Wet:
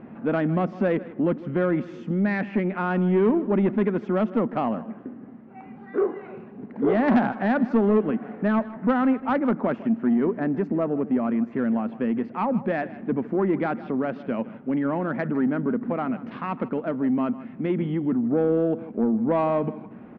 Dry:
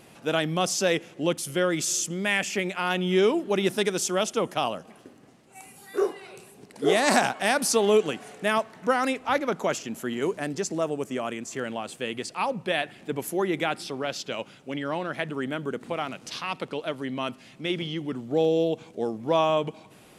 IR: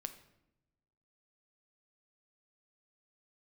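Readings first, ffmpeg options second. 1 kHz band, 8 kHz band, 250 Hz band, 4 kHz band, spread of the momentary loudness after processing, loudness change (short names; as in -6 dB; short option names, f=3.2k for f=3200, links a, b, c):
-0.5 dB, under -40 dB, +8.5 dB, under -15 dB, 9 LU, +2.5 dB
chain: -filter_complex "[0:a]lowpass=f=1.8k:w=0.5412,lowpass=f=1.8k:w=1.3066,equalizer=f=230:t=o:w=0.68:g=14.5,asplit=2[a][b];[b]acompressor=threshold=-28dB:ratio=6,volume=1dB[c];[a][c]amix=inputs=2:normalize=0,asoftclip=type=tanh:threshold=-10.5dB,aecho=1:1:156:0.141,volume=-2.5dB"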